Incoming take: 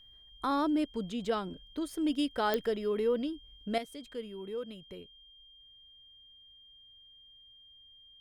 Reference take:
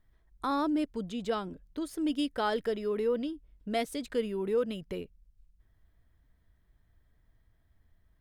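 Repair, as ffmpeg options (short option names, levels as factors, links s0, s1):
-af "adeclick=t=4,bandreject=f=3200:w=30,asetnsamples=n=441:p=0,asendcmd='3.78 volume volume 9.5dB',volume=1"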